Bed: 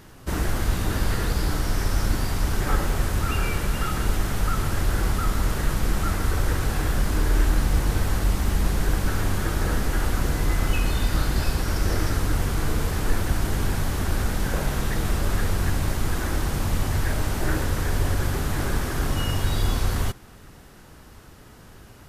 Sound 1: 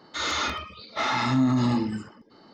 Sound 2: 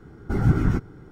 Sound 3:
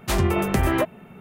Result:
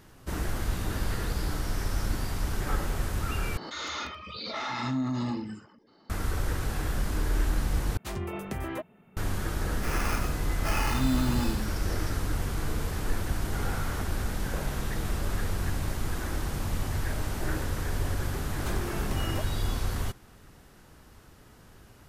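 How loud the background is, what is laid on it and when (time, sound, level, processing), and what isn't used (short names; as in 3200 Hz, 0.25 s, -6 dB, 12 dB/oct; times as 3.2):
bed -6.5 dB
3.57 replace with 1 -8 dB + backwards sustainer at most 31 dB/s
7.97 replace with 3 -13.5 dB
9.68 add 1 -6 dB + sample-rate reducer 3800 Hz
13.24 add 2 -3 dB + elliptic high-pass 480 Hz
18.57 add 3 -15.5 dB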